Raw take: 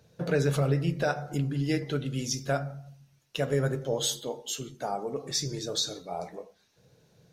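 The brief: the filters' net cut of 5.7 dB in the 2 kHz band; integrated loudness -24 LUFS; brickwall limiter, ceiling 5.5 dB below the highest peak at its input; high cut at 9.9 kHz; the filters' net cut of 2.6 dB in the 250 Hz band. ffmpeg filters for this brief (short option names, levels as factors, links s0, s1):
-af "lowpass=9900,equalizer=f=250:t=o:g=-4,equalizer=f=2000:t=o:g=-8.5,volume=3.16,alimiter=limit=0.251:level=0:latency=1"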